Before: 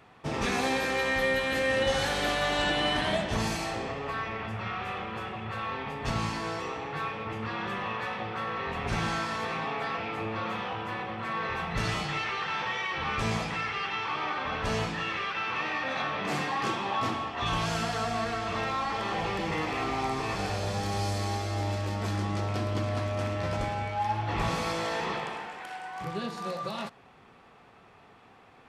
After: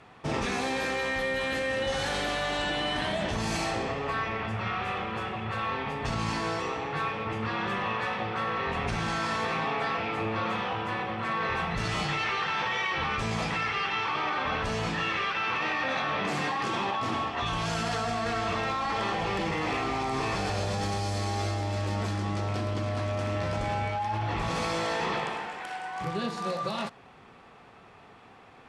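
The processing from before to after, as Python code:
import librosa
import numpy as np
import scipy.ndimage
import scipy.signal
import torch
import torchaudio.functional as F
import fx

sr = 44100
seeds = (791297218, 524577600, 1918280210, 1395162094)

p1 = scipy.signal.sosfilt(scipy.signal.butter(4, 11000.0, 'lowpass', fs=sr, output='sos'), x)
p2 = fx.over_compress(p1, sr, threshold_db=-32.0, ratio=-0.5)
p3 = p1 + (p2 * 10.0 ** (1.0 / 20.0))
y = p3 * 10.0 ** (-4.5 / 20.0)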